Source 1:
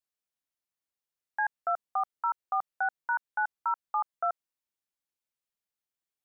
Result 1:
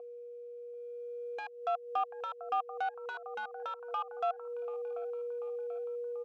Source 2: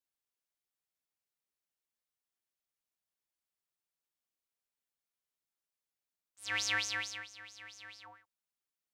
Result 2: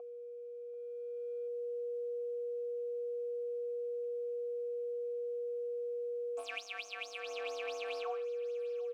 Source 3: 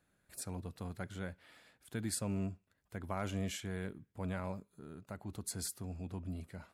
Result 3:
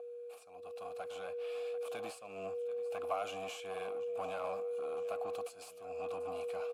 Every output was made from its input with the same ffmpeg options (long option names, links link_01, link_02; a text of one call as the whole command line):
ffmpeg -i in.wav -filter_complex "[0:a]crystalizer=i=7.5:c=0,aeval=exprs='val(0)+0.0141*sin(2*PI*480*n/s)':channel_layout=same,aeval=exprs='0.562*(cos(1*acos(clip(val(0)/0.562,-1,1)))-cos(1*PI/2))+0.00398*(cos(6*acos(clip(val(0)/0.562,-1,1)))-cos(6*PI/2))':channel_layout=same,highshelf=frequency=11000:gain=5,acompressor=threshold=-34dB:ratio=20,asplit=2[link_01][link_02];[link_02]aecho=0:1:738|1476|2214|2952:0.0944|0.0519|0.0286|0.0157[link_03];[link_01][link_03]amix=inputs=2:normalize=0,asoftclip=type=hard:threshold=-37dB,equalizer=frequency=150:width=3.7:gain=-8.5,dynaudnorm=framelen=180:gausssize=13:maxgain=8.5dB,asplit=3[link_04][link_05][link_06];[link_04]bandpass=frequency=730:width_type=q:width=8,volume=0dB[link_07];[link_05]bandpass=frequency=1090:width_type=q:width=8,volume=-6dB[link_08];[link_06]bandpass=frequency=2440:width_type=q:width=8,volume=-9dB[link_09];[link_07][link_08][link_09]amix=inputs=3:normalize=0,volume=8dB" out.wav